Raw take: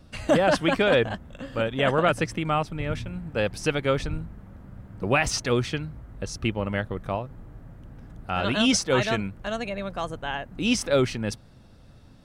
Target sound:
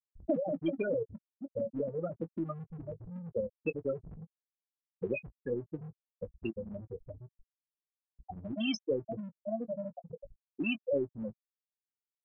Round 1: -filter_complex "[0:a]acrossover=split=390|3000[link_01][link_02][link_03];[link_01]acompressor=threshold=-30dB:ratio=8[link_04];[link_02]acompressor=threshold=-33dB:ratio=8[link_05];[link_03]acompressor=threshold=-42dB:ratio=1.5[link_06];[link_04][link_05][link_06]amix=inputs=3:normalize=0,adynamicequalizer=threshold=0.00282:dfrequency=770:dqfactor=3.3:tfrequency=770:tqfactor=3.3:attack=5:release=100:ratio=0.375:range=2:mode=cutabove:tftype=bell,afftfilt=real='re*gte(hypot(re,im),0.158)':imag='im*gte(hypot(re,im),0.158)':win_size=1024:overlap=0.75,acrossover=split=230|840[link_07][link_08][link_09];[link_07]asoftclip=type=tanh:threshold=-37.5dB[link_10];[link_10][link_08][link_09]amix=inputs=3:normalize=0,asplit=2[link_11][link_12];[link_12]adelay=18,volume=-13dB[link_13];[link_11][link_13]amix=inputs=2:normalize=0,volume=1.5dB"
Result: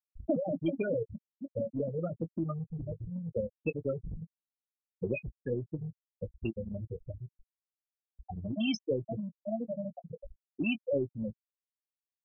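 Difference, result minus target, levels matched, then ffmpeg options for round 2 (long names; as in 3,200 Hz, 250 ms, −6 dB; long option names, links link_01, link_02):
soft clipping: distortion −7 dB
-filter_complex "[0:a]acrossover=split=390|3000[link_01][link_02][link_03];[link_01]acompressor=threshold=-30dB:ratio=8[link_04];[link_02]acompressor=threshold=-33dB:ratio=8[link_05];[link_03]acompressor=threshold=-42dB:ratio=1.5[link_06];[link_04][link_05][link_06]amix=inputs=3:normalize=0,adynamicequalizer=threshold=0.00282:dfrequency=770:dqfactor=3.3:tfrequency=770:tqfactor=3.3:attack=5:release=100:ratio=0.375:range=2:mode=cutabove:tftype=bell,afftfilt=real='re*gte(hypot(re,im),0.158)':imag='im*gte(hypot(re,im),0.158)':win_size=1024:overlap=0.75,acrossover=split=230|840[link_07][link_08][link_09];[link_07]asoftclip=type=tanh:threshold=-49.5dB[link_10];[link_10][link_08][link_09]amix=inputs=3:normalize=0,asplit=2[link_11][link_12];[link_12]adelay=18,volume=-13dB[link_13];[link_11][link_13]amix=inputs=2:normalize=0,volume=1.5dB"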